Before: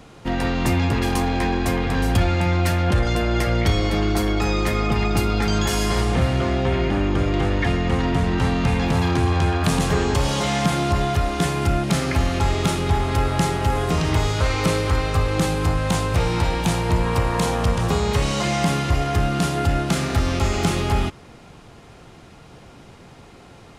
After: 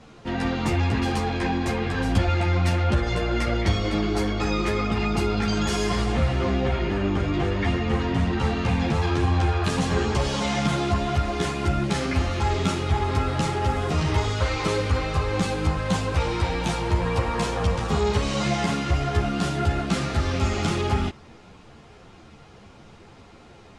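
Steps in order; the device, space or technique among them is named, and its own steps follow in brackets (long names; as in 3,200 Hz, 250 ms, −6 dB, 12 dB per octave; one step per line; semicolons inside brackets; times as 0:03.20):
string-machine ensemble chorus (string-ensemble chorus; low-pass filter 7,500 Hz 12 dB per octave)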